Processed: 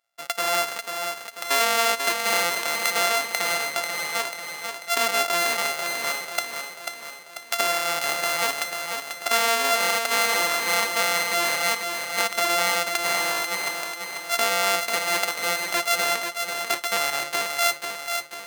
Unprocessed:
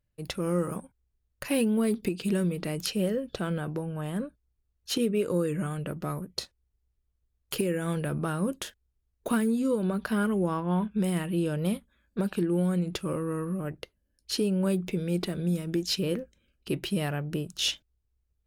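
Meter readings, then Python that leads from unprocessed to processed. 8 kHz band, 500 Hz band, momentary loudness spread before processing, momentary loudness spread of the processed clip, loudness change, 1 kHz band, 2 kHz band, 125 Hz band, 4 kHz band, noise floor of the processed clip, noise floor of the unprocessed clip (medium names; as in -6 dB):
+14.5 dB, +2.5 dB, 11 LU, 9 LU, +6.5 dB, +15.0 dB, +18.0 dB, -19.5 dB, +11.5 dB, -41 dBFS, -77 dBFS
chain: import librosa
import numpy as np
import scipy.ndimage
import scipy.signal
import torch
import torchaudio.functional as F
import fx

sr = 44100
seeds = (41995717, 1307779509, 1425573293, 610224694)

p1 = np.r_[np.sort(x[:len(x) // 64 * 64].reshape(-1, 64), axis=1).ravel(), x[len(x) // 64 * 64:]]
p2 = scipy.signal.sosfilt(scipy.signal.butter(2, 910.0, 'highpass', fs=sr, output='sos'), p1)
p3 = fx.level_steps(p2, sr, step_db=19)
p4 = p2 + (p3 * librosa.db_to_amplitude(-2.0))
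p5 = fx.echo_feedback(p4, sr, ms=491, feedback_pct=53, wet_db=-6)
y = p5 * librosa.db_to_amplitude(6.5)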